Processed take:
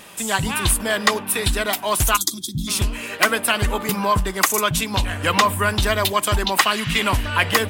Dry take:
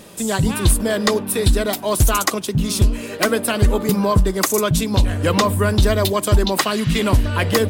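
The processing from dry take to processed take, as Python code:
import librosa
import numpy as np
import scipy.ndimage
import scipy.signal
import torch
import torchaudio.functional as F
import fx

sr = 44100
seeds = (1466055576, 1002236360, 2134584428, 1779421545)

y = fx.band_shelf(x, sr, hz=1500.0, db=9.0, octaves=2.4)
y = fx.spec_box(y, sr, start_s=2.16, length_s=0.52, low_hz=370.0, high_hz=3200.0, gain_db=-27)
y = fx.high_shelf(y, sr, hz=2700.0, db=8.5)
y = y * librosa.db_to_amplitude(-7.0)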